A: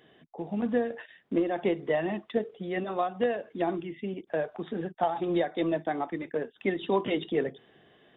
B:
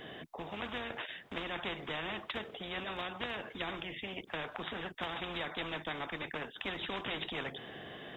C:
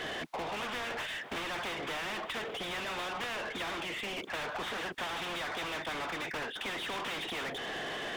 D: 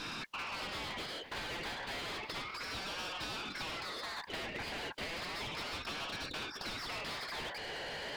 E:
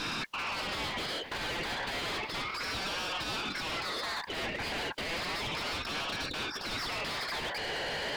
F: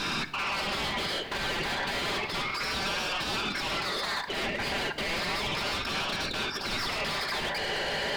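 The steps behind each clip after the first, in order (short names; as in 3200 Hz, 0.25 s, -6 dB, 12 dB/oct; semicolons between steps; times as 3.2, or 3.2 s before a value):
spectral compressor 4:1; gain -7 dB
transient shaper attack +9 dB, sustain -4 dB; overdrive pedal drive 36 dB, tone 3000 Hz, clips at -22 dBFS; gain -7.5 dB
ring modulator with a swept carrier 1600 Hz, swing 25%, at 0.32 Hz; gain -1 dB
limiter -35 dBFS, peak gain reduction 7.5 dB; gain +7 dB
shoebox room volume 3200 m³, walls furnished, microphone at 1.2 m; gain +3.5 dB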